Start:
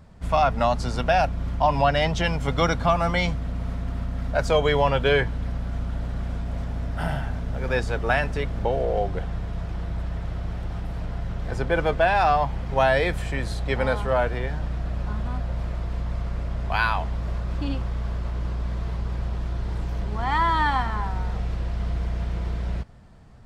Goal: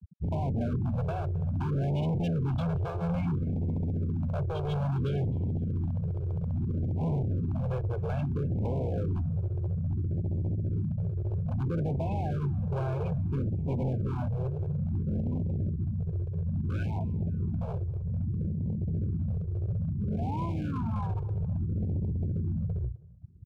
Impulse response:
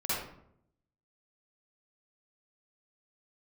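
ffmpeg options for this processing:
-filter_complex "[0:a]highpass=frequency=91:width=0.5412,highpass=frequency=91:width=1.3066,aemphasis=mode=reproduction:type=riaa,bandreject=frequency=60:width_type=h:width=6,bandreject=frequency=120:width_type=h:width=6,bandreject=frequency=180:width_type=h:width=6,afftfilt=real='re*gte(hypot(re,im),0.112)':imag='im*gte(hypot(re,im),0.112)':win_size=1024:overlap=0.75,tiltshelf=frequency=930:gain=4,acrossover=split=280[link_01][link_02];[link_01]asoftclip=type=tanh:threshold=-23.5dB[link_03];[link_02]acompressor=threshold=-33dB:ratio=5[link_04];[link_03][link_04]amix=inputs=2:normalize=0,aexciter=amount=8.9:drive=7.5:freq=3100,asoftclip=type=hard:threshold=-24.5dB,asuperstop=centerf=1900:order=12:qfactor=4.2,aecho=1:1:261|522|783:0.0668|0.0348|0.0181,afftfilt=real='re*(1-between(b*sr/1024,220*pow(1500/220,0.5+0.5*sin(2*PI*0.6*pts/sr))/1.41,220*pow(1500/220,0.5+0.5*sin(2*PI*0.6*pts/sr))*1.41))':imag='im*(1-between(b*sr/1024,220*pow(1500/220,0.5+0.5*sin(2*PI*0.6*pts/sr))/1.41,220*pow(1500/220,0.5+0.5*sin(2*PI*0.6*pts/sr))*1.41))':win_size=1024:overlap=0.75,volume=-2dB"

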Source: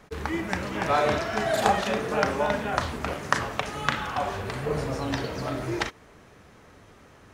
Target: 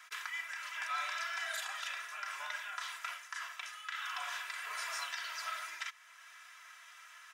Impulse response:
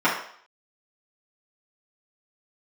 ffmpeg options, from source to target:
-af "highpass=frequency=1300:width=0.5412,highpass=frequency=1300:width=1.3066,bandreject=frequency=4300:width=15,aecho=1:1:3:0.71,areverse,acompressor=threshold=-34dB:ratio=5,areverse,alimiter=level_in=5.5dB:limit=-24dB:level=0:latency=1:release=499,volume=-5.5dB,volume=2.5dB"

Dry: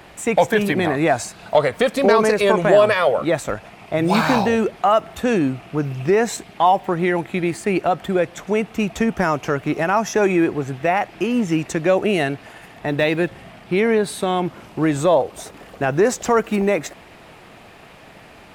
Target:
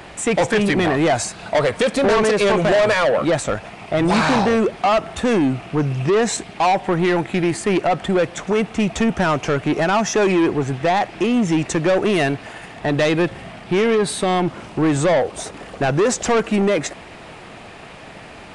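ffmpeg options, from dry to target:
ffmpeg -i in.wav -af "asoftclip=type=tanh:threshold=-18dB,aresample=22050,aresample=44100,volume=5.5dB" out.wav

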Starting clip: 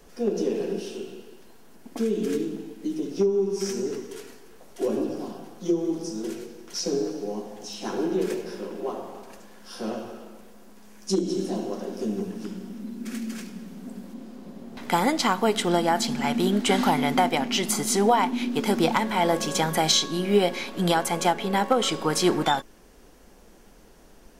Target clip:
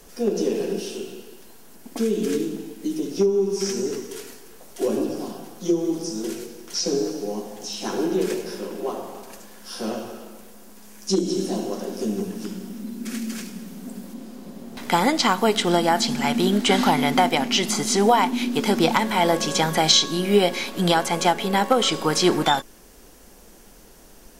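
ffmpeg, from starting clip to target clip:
ffmpeg -i in.wav -filter_complex "[0:a]acrossover=split=6300[link_01][link_02];[link_02]acompressor=threshold=-49dB:ratio=4:attack=1:release=60[link_03];[link_01][link_03]amix=inputs=2:normalize=0,aemphasis=mode=production:type=cd,volume=3dB" out.wav

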